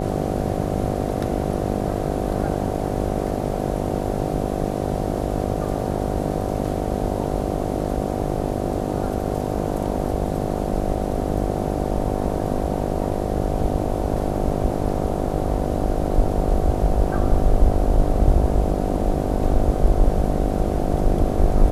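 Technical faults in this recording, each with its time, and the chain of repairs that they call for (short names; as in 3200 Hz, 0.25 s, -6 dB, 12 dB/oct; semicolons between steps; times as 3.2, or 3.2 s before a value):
buzz 50 Hz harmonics 15 -25 dBFS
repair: de-hum 50 Hz, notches 15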